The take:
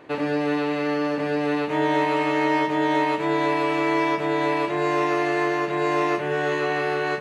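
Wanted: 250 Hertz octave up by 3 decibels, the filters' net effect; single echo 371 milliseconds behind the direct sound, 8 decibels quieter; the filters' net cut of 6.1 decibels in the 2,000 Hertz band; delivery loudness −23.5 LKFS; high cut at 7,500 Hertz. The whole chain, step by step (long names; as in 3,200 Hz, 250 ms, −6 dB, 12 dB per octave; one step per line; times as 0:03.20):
low-pass filter 7,500 Hz
parametric band 250 Hz +4.5 dB
parametric band 2,000 Hz −7.5 dB
single-tap delay 371 ms −8 dB
level −1.5 dB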